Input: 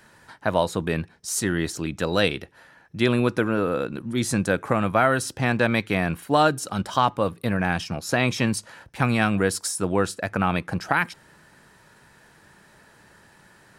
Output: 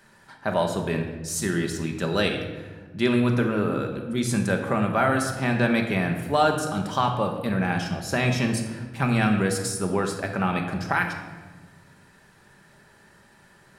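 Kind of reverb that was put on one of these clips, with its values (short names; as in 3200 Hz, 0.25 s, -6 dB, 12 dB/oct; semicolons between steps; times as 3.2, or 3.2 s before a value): shoebox room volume 970 m³, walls mixed, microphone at 1.2 m; gain -3.5 dB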